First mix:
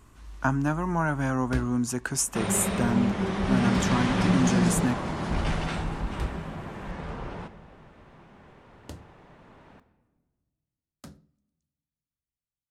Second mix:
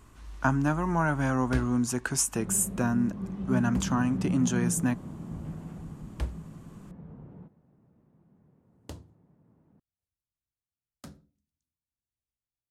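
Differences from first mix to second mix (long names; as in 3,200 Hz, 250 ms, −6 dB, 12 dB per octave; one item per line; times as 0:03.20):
second sound: add resonant band-pass 170 Hz, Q 1.5
reverb: off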